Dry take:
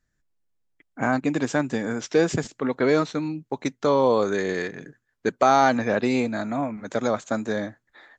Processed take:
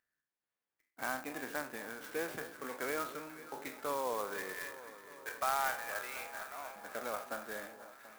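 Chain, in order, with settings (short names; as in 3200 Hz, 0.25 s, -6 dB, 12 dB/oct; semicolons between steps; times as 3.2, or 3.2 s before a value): spectral trails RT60 0.39 s; 4.53–6.76 HPF 750 Hz 12 dB/oct; gate -38 dBFS, range -49 dB; LPF 1700 Hz 12 dB/oct; differentiator; upward compressor, threshold -55 dBFS; echo with dull and thin repeats by turns 0.245 s, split 1100 Hz, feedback 84%, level -13 dB; clock jitter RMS 0.045 ms; gain +4.5 dB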